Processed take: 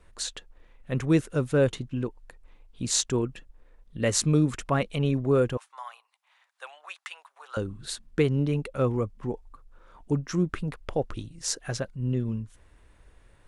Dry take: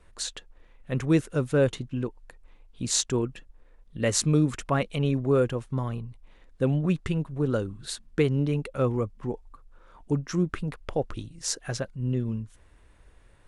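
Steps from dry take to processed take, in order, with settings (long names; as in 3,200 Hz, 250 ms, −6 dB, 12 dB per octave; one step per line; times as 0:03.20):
0:05.57–0:07.57: Butterworth high-pass 780 Hz 36 dB per octave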